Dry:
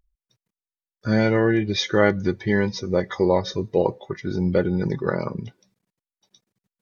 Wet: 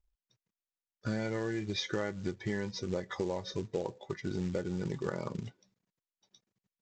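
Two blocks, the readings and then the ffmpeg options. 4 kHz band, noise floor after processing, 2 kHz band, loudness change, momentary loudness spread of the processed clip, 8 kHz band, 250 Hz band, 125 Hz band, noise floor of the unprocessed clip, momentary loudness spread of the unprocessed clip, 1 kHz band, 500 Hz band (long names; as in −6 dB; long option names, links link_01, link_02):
−10.5 dB, below −85 dBFS, −14.5 dB, −14.0 dB, 6 LU, can't be measured, −13.5 dB, −12.5 dB, below −85 dBFS, 11 LU, −15.0 dB, −14.5 dB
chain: -af "adynamicequalizer=threshold=0.0141:dfrequency=230:dqfactor=7.2:tfrequency=230:tqfactor=7.2:attack=5:release=100:ratio=0.375:range=1.5:mode=cutabove:tftype=bell,acompressor=threshold=-24dB:ratio=8,aresample=16000,acrusher=bits=5:mode=log:mix=0:aa=0.000001,aresample=44100,volume=-6.5dB"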